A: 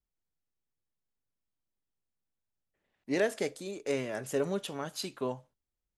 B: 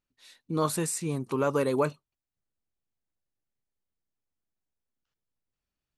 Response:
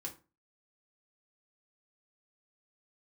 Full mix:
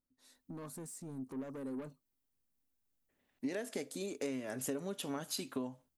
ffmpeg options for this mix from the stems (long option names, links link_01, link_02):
-filter_complex "[0:a]highshelf=frequency=10000:gain=12,adelay=350,volume=-0.5dB[link_01];[1:a]equalizer=frequency=2700:width=0.86:gain=-15,acompressor=threshold=-45dB:ratio=2,asoftclip=type=tanh:threshold=-39dB,volume=-3.5dB[link_02];[link_01][link_02]amix=inputs=2:normalize=0,equalizer=frequency=260:width_type=o:width=0.22:gain=12,acompressor=threshold=-35dB:ratio=10"